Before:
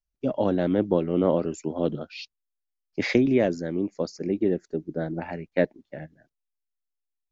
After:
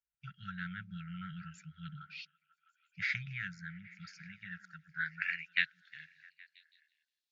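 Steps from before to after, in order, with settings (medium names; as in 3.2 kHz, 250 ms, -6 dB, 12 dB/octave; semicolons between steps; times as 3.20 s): brick-wall FIR band-stop 180–1300 Hz; repeats whose band climbs or falls 164 ms, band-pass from 290 Hz, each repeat 0.7 oct, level -9 dB; band-pass sweep 760 Hz -> 4 kHz, 3.96–5.97 s; trim +11.5 dB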